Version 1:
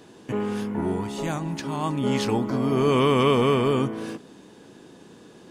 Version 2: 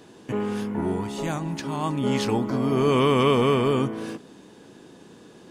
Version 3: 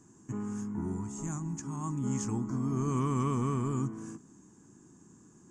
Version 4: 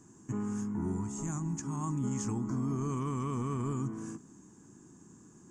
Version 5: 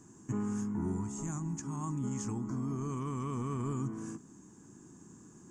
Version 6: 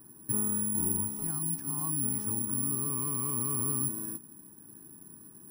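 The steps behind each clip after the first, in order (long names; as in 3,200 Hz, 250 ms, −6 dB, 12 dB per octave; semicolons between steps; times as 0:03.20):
no processing that can be heard
drawn EQ curve 130 Hz 0 dB, 340 Hz −6 dB, 520 Hz −22 dB, 1,100 Hz −6 dB, 4,000 Hz −26 dB, 7,000 Hz +9 dB, 11,000 Hz −16 dB; level −4 dB
brickwall limiter −26.5 dBFS, peak gain reduction 7 dB; level +1.5 dB
speech leveller 2 s; level −2 dB
bad sample-rate conversion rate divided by 4×, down filtered, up zero stuff; level −2 dB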